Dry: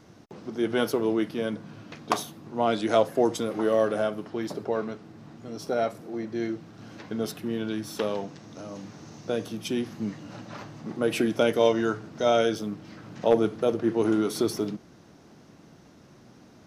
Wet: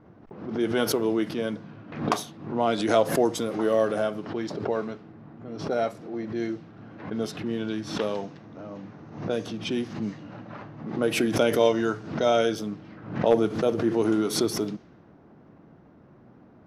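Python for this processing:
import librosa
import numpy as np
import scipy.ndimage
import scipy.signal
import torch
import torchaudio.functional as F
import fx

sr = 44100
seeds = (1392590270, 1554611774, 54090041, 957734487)

y = fx.env_lowpass(x, sr, base_hz=1300.0, full_db=-23.0)
y = fx.pre_swell(y, sr, db_per_s=95.0)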